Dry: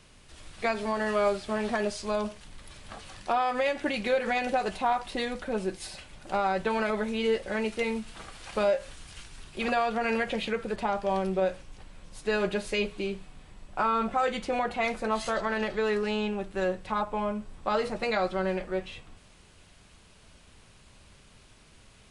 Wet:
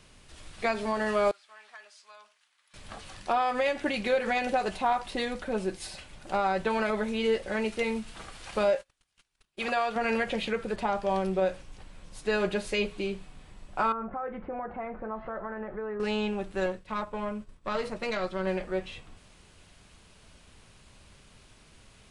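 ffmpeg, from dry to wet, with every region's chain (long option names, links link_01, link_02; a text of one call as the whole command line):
ffmpeg -i in.wav -filter_complex "[0:a]asettb=1/sr,asplit=3[link_01][link_02][link_03];[link_01]atrim=end=1.314[link_04];[link_02]atrim=start=1.31:end=2.74,asetpts=PTS-STARTPTS,afade=type=in:duration=0.004:curve=qsin,afade=type=out:start_time=1.426:duration=0.004:curve=qsin,bandpass=frequency=1300:width_type=q:width=1.1,aderivative[link_05];[link_03]atrim=start=2.736[link_06];[link_04][link_05]acrossfade=duration=0.004:curve1=hsin:curve2=qsin[link_07];[link_07][link_06]acrossfade=duration=0.004:curve1=qsin:curve2=hsin,asettb=1/sr,asplit=3[link_08][link_09][link_10];[link_08]atrim=end=8.754[link_11];[link_09]atrim=start=8.75:end=9.96,asetpts=PTS-STARTPTS,afade=type=in:duration=0.004:curve=qsin,afade=type=out:start_time=1.206:duration=0.004:curve=qsin,agate=range=-31dB:threshold=-40dB:ratio=16:release=100:detection=peak,lowshelf=frequency=300:gain=-9.5[link_12];[link_10]atrim=start=9.956[link_13];[link_11][link_12]acrossfade=duration=0.004:curve1=hsin:curve2=qsin[link_14];[link_14][link_13]acrossfade=duration=0.004:curve1=qsin:curve2=hsin,asettb=1/sr,asplit=3[link_15][link_16][link_17];[link_15]atrim=end=13.924[link_18];[link_16]atrim=start=13.92:end=16,asetpts=PTS-STARTPTS,afade=type=in:duration=0.004:curve=qsin,afade=type=out:start_time=2.076:duration=0.004:curve=qsin,lowpass=frequency=1600:width=0.5412,lowpass=frequency=1600:width=1.3066,acompressor=threshold=-37dB:ratio=2:attack=3.2:release=140:knee=1:detection=peak[link_19];[link_17]atrim=start=15.996[link_20];[link_18][link_19]acrossfade=duration=0.004:curve1=hsin:curve2=qsin[link_21];[link_21][link_20]acrossfade=duration=0.004:curve1=qsin:curve2=hsin,asettb=1/sr,asplit=3[link_22][link_23][link_24];[link_22]atrim=end=16.664[link_25];[link_23]atrim=start=16.66:end=18.47,asetpts=PTS-STARTPTS,afade=type=in:duration=0.004:curve=qsin,afade=type=out:start_time=1.806:duration=0.004:curve=qsin,agate=range=-33dB:threshold=-39dB:ratio=3:release=100:detection=peak,bandreject=frequency=790:width=5.5,aeval=exprs='(tanh(11.2*val(0)+0.6)-tanh(0.6))/11.2':channel_layout=same[link_26];[link_24]atrim=start=18.466[link_27];[link_25][link_26]acrossfade=duration=0.004:curve1=hsin:curve2=qsin[link_28];[link_28][link_27]acrossfade=duration=0.004:curve1=qsin:curve2=hsin" out.wav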